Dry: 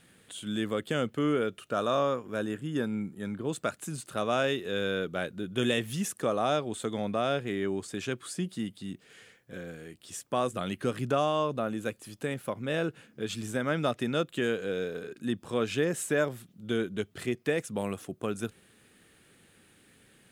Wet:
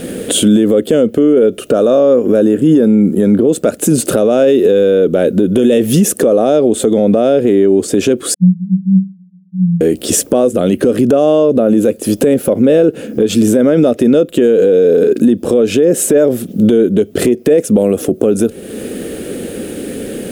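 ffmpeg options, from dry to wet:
-filter_complex "[0:a]asettb=1/sr,asplit=3[s0][s1][s2];[s0]atrim=end=8.344[s3];[s1]atrim=start=8.34:end=9.81,asetpts=PTS-STARTPTS,afade=t=in:d=0.004:c=qsin,afade=t=out:st=1.466:d=0.004:c=qsin,asuperpass=centerf=180:order=12:qfactor=7.1[s4];[s2]atrim=start=9.806[s5];[s3][s4]acrossfade=d=0.004:c1=hsin:c2=qsin[s6];[s6][s5]acrossfade=d=0.004:c1=qsin:c2=hsin,equalizer=f=125:t=o:w=1:g=-8,equalizer=f=250:t=o:w=1:g=7,equalizer=f=500:t=o:w=1:g=11,equalizer=f=1000:t=o:w=1:g=-12,equalizer=f=2000:t=o:w=1:g=-7,equalizer=f=4000:t=o:w=1:g=-6,equalizer=f=8000:t=o:w=1:g=-4,acompressor=threshold=0.00891:ratio=2.5,alimiter=level_in=63.1:limit=0.891:release=50:level=0:latency=1,volume=0.891"

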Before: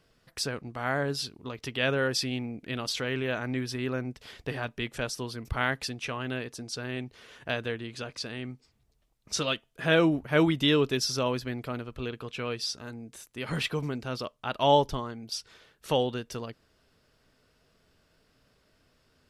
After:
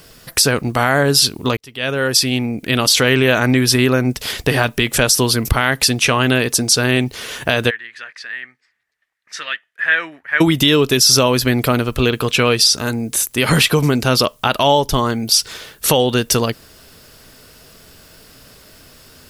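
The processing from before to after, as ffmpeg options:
-filter_complex "[0:a]asplit=3[s0][s1][s2];[s0]afade=t=out:st=7.69:d=0.02[s3];[s1]bandpass=f=1800:t=q:w=7.9,afade=t=in:st=7.69:d=0.02,afade=t=out:st=10.4:d=0.02[s4];[s2]afade=t=in:st=10.4:d=0.02[s5];[s3][s4][s5]amix=inputs=3:normalize=0,asplit=2[s6][s7];[s6]atrim=end=1.57,asetpts=PTS-STARTPTS,afade=t=out:st=1.566:d=0.004:c=hsin[s8];[s7]atrim=start=1.57,asetpts=PTS-STARTPTS,afade=t=in:d=1.68[s9];[s8][s9]concat=n=2:v=0:a=1,acompressor=threshold=0.0316:ratio=6,aemphasis=mode=production:type=50fm,alimiter=level_in=11.9:limit=0.891:release=50:level=0:latency=1,volume=0.891"

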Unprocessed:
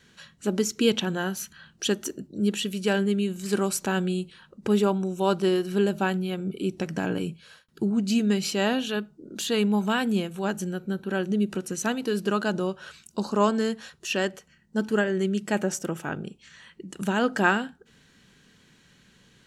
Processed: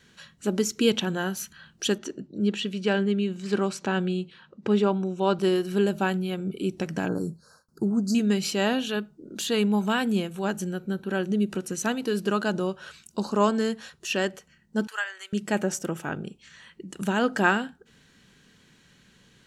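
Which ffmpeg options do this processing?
-filter_complex "[0:a]asettb=1/sr,asplit=3[s0][s1][s2];[s0]atrim=end=1.984[s3];[s1]atrim=start=1.98:end=5.39,asetpts=PTS-STARTPTS,afade=t=in:d=0.004:c=qsin,afade=t=out:st=3.406:d=0.004:c=qsin,highpass=100,lowpass=4600[s4];[s2]atrim=start=5.386[s5];[s3][s4]acrossfade=d=0.004:c1=hsin:c2=qsin[s6];[s6][s5]acrossfade=d=0.004:c1=qsin:c2=hsin,asettb=1/sr,asplit=3[s7][s8][s9];[s7]atrim=end=7.084[s10];[s8]atrim=start=7.08:end=8.15,asetpts=PTS-STARTPTS,afade=t=in:d=0.004:c=qsin,afade=t=out:st=1.066:d=0.004:c=qsin,asuperstop=centerf=2600:order=12:qfactor=0.88[s11];[s9]atrim=start=8.146[s12];[s10][s11]acrossfade=d=0.004:c1=hsin:c2=qsin[s13];[s13][s12]acrossfade=d=0.004:c1=qsin:c2=hsin,asettb=1/sr,asplit=3[s14][s15][s16];[s14]atrim=end=14.874[s17];[s15]atrim=start=14.87:end=15.33,asetpts=PTS-STARTPTS,afade=t=in:d=0.004:c=qsin,afade=t=out:st=0.456:d=0.004:c=qsin,highpass=f=960:w=0.5412,highpass=f=960:w=1.3066[s18];[s16]atrim=start=15.326[s19];[s17][s18]acrossfade=d=0.004:c1=hsin:c2=qsin[s20];[s20][s19]acrossfade=d=0.004:c1=qsin:c2=hsin"

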